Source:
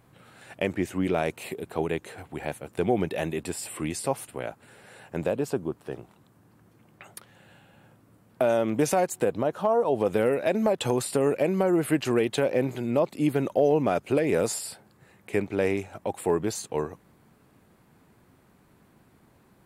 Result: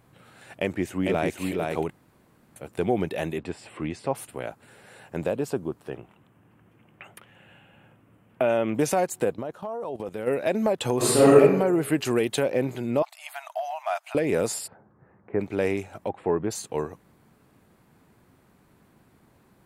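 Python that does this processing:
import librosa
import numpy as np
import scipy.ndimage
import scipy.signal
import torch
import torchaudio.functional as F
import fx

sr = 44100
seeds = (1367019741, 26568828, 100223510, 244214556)

y = fx.echo_throw(x, sr, start_s=0.54, length_s=0.84, ms=450, feedback_pct=15, wet_db=-3.0)
y = fx.bessel_lowpass(y, sr, hz=2800.0, order=2, at=(3.38, 4.15))
y = fx.high_shelf_res(y, sr, hz=3500.0, db=-6.5, q=3.0, at=(5.9, 8.75))
y = fx.level_steps(y, sr, step_db=16, at=(9.32, 10.26), fade=0.02)
y = fx.reverb_throw(y, sr, start_s=10.97, length_s=0.42, rt60_s=0.95, drr_db=-10.5)
y = fx.high_shelf(y, sr, hz=5600.0, db=7.0, at=(11.97, 12.43))
y = fx.brickwall_highpass(y, sr, low_hz=610.0, at=(13.02, 14.15))
y = fx.lowpass(y, sr, hz=1500.0, slope=24, at=(14.66, 15.39), fade=0.02)
y = fx.lowpass(y, sr, hz=2000.0, slope=12, at=(16.08, 16.5), fade=0.02)
y = fx.edit(y, sr, fx.room_tone_fill(start_s=1.9, length_s=0.66), tone=tone)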